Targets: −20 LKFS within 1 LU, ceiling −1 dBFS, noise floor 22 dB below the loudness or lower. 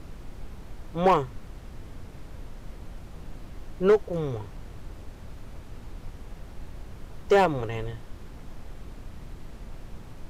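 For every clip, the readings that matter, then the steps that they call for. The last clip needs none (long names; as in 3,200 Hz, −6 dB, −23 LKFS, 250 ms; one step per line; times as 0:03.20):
share of clipped samples 0.3%; peaks flattened at −13.5 dBFS; background noise floor −44 dBFS; target noise floor −48 dBFS; integrated loudness −25.5 LKFS; sample peak −13.5 dBFS; target loudness −20.0 LKFS
→ clipped peaks rebuilt −13.5 dBFS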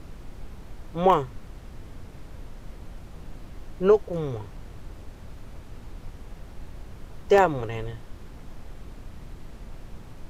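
share of clipped samples 0.0%; background noise floor −44 dBFS; target noise floor −46 dBFS
→ noise reduction from a noise print 6 dB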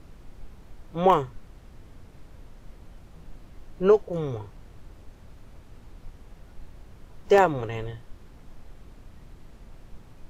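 background noise floor −50 dBFS; integrated loudness −24.5 LKFS; sample peak −6.0 dBFS; target loudness −20.0 LKFS
→ level +4.5 dB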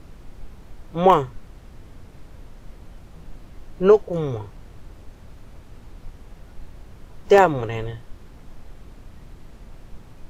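integrated loudness −20.0 LKFS; sample peak −1.5 dBFS; background noise floor −46 dBFS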